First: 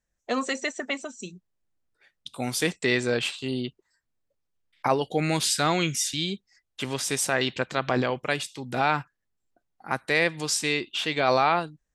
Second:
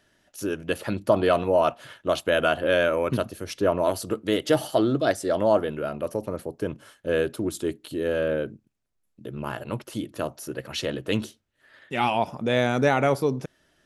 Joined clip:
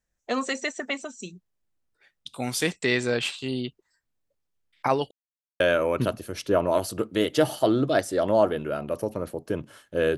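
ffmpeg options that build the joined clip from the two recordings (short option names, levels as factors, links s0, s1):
-filter_complex "[0:a]apad=whole_dur=10.17,atrim=end=10.17,asplit=2[s0][s1];[s0]atrim=end=5.11,asetpts=PTS-STARTPTS,afade=t=out:st=5.106:d=0.004:c=hsin[s2];[s1]atrim=start=5.11:end=5.6,asetpts=PTS-STARTPTS,volume=0[s3];[1:a]atrim=start=2.72:end=7.29,asetpts=PTS-STARTPTS,afade=t=in:d=0.004:c=hsin[s4];[s2][s3][s4]concat=n=3:v=0:a=1"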